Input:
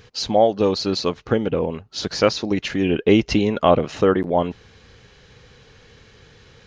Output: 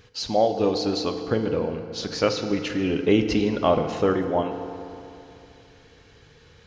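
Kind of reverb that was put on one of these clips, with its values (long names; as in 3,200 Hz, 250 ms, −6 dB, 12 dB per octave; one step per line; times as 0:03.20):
feedback delay network reverb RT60 2.8 s, high-frequency decay 0.6×, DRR 6 dB
level −5 dB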